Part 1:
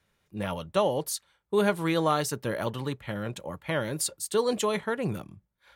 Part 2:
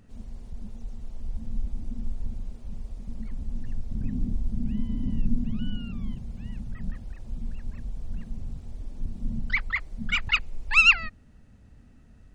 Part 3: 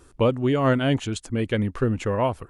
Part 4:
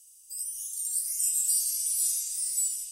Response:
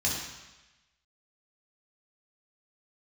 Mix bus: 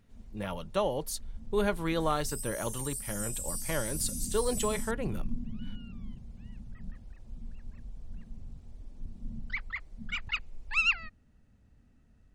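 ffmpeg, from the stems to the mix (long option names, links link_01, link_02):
-filter_complex "[0:a]volume=-4.5dB[link_01];[1:a]volume=-9.5dB[link_02];[3:a]acompressor=threshold=-40dB:ratio=2.5,adelay=2000,volume=-1dB[link_03];[link_01][link_02][link_03]amix=inputs=3:normalize=0"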